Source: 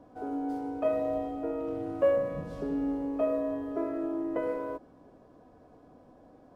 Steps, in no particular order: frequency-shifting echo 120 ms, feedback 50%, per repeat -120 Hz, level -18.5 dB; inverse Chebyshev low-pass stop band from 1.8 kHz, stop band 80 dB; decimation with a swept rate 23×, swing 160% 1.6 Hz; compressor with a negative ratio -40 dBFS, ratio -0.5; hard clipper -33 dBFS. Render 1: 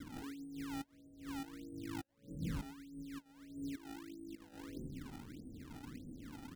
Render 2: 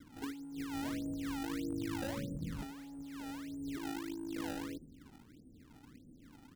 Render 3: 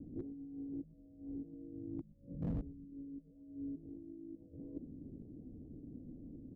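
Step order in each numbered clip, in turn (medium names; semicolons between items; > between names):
frequency-shifting echo > compressor with a negative ratio > hard clipper > inverse Chebyshev low-pass > decimation with a swept rate; inverse Chebyshev low-pass > hard clipper > frequency-shifting echo > decimation with a swept rate > compressor with a negative ratio; compressor with a negative ratio > decimation with a swept rate > inverse Chebyshev low-pass > frequency-shifting echo > hard clipper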